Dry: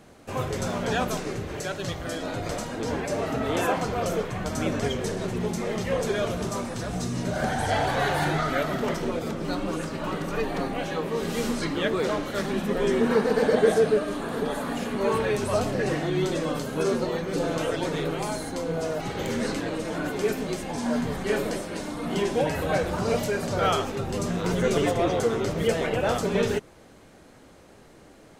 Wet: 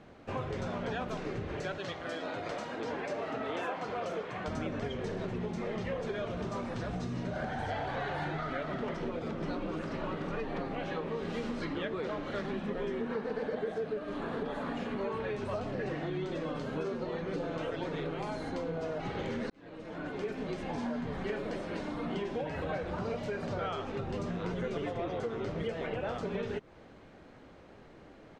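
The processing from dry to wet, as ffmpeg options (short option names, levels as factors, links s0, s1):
-filter_complex "[0:a]asettb=1/sr,asplit=3[s0][s1][s2];[s0]atrim=end=1.784[s3];[s1]atrim=start=1.78:end=4.48,asetpts=PTS-STARTPTS,afade=t=in:d=0.004:c=qsin,afade=t=out:st=2.696:d=0.004:c=qsin,highpass=f=410:p=1[s4];[s2]atrim=start=4.476[s5];[s3][s4]acrossfade=d=0.004:c1=hsin:c2=qsin[s6];[s6][s5]acrossfade=d=0.004:c1=qsin:c2=hsin,asplit=2[s7][s8];[s8]afade=t=in:st=8.94:d=0.01,afade=t=out:st=9.41:d=0.01,aecho=0:1:480|960|1440|1920|2400|2880|3360|3840|4320|4800|5280|5760:0.562341|0.421756|0.316317|0.237238|0.177928|0.133446|0.100085|0.0750635|0.0562976|0.0422232|0.0316674|0.0237506[s9];[s7][s9]amix=inputs=2:normalize=0,asplit=2[s10][s11];[s10]atrim=end=19.5,asetpts=PTS-STARTPTS,afade=t=out:st=19.496:d=0.004:c=hsin[s12];[s11]atrim=start=19.5,asetpts=PTS-STARTPTS,afade=t=in:d=1.23[s13];[s12][s13]concat=n=2:v=0:a=1,lowpass=3400,acompressor=threshold=0.0316:ratio=6,volume=0.75"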